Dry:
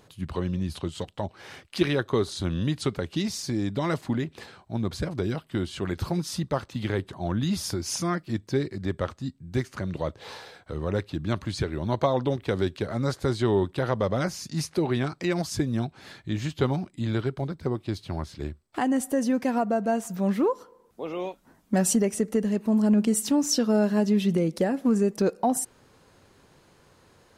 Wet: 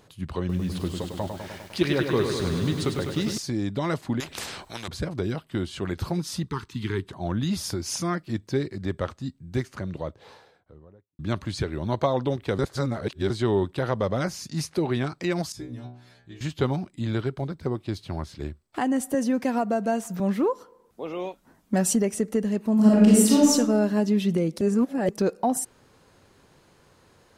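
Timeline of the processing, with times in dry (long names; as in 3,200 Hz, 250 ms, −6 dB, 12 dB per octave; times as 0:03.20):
0:00.39–0:03.38: feedback echo at a low word length 101 ms, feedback 80%, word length 8 bits, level −6 dB
0:04.20–0:04.88: every bin compressed towards the loudest bin 4 to 1
0:06.46–0:07.08: elliptic band-stop filter 430–900 Hz
0:09.44–0:11.19: fade out and dull
0:12.59–0:13.30: reverse
0:15.52–0:16.41: stiff-string resonator 60 Hz, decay 0.63 s, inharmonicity 0.002
0:19.14–0:20.20: multiband upward and downward compressor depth 40%
0:22.74–0:23.50: thrown reverb, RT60 1 s, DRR −6.5 dB
0:24.61–0:25.09: reverse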